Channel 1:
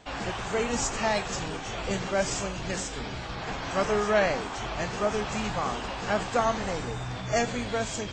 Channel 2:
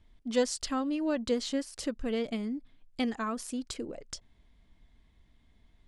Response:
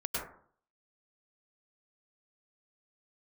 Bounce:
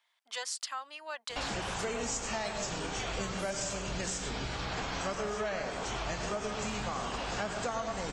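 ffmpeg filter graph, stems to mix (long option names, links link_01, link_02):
-filter_complex "[0:a]highshelf=frequency=4500:gain=8,adelay=1300,volume=1dB,asplit=2[link_01][link_02];[link_02]volume=-8dB[link_03];[1:a]highpass=frequency=840:width=0.5412,highpass=frequency=840:width=1.3066,volume=1.5dB[link_04];[2:a]atrim=start_sample=2205[link_05];[link_03][link_05]afir=irnorm=-1:irlink=0[link_06];[link_01][link_04][link_06]amix=inputs=3:normalize=0,acompressor=threshold=-33dB:ratio=6"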